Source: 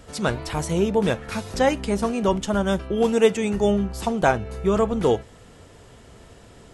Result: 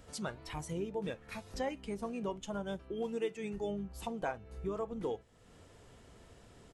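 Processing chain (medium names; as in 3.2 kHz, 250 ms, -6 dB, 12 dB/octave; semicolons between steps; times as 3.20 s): harmony voices -5 st -12 dB; compression 2:1, threshold -41 dBFS, peak gain reduction 16.5 dB; spectral noise reduction 7 dB; trim -3.5 dB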